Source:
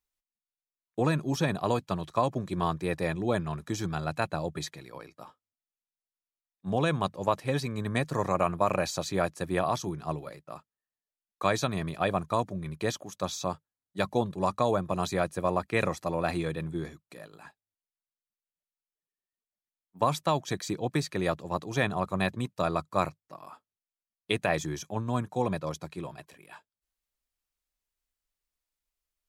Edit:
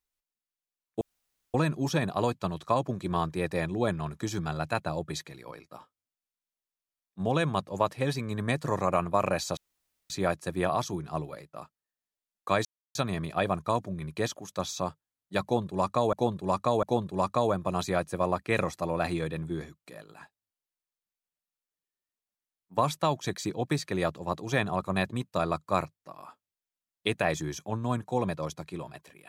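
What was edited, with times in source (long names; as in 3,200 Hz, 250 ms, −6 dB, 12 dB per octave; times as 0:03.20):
0:01.01: splice in room tone 0.53 s
0:09.04: splice in room tone 0.53 s
0:11.59: splice in silence 0.30 s
0:14.07–0:14.77: repeat, 3 plays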